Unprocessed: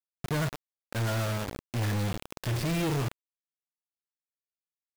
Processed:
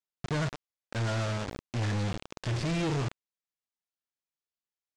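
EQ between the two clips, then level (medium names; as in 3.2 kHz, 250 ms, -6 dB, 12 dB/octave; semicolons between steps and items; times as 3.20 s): low-pass 7.6 kHz 24 dB/octave; -1.0 dB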